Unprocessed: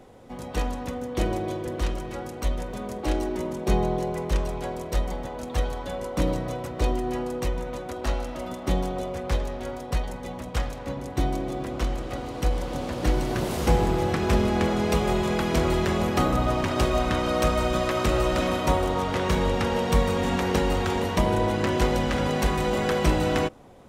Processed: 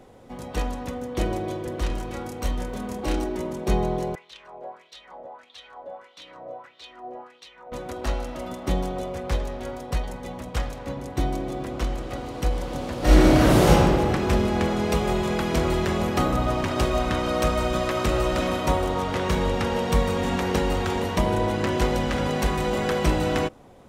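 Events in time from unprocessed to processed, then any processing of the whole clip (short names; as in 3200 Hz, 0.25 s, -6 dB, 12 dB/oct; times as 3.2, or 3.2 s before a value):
1.87–3.24 doubler 28 ms -3 dB
4.15–7.72 wah 1.6 Hz 590–3800 Hz, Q 3.5
12.99–13.68 reverb throw, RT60 2.1 s, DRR -10 dB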